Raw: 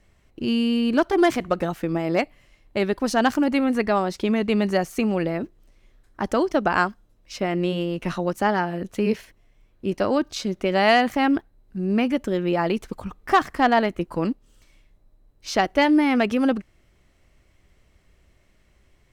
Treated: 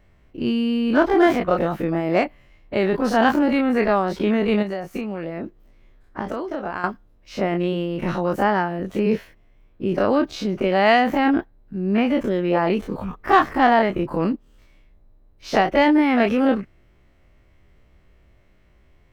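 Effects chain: spectral dilation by 60 ms; bell 8300 Hz -12.5 dB 2 oct; 4.62–6.84 compressor 12:1, threshold -24 dBFS, peak gain reduction 12.5 dB

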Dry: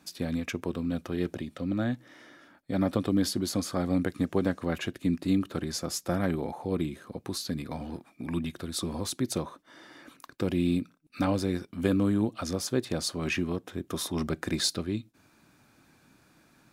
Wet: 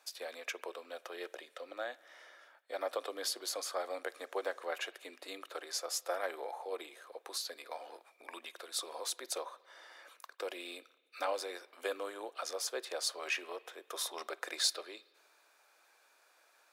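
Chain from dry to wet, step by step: steep high-pass 470 Hz 36 dB/oct; on a send: high shelf 3200 Hz +10.5 dB + reverb RT60 1.4 s, pre-delay 47 ms, DRR 20 dB; on the sum: gain -3 dB

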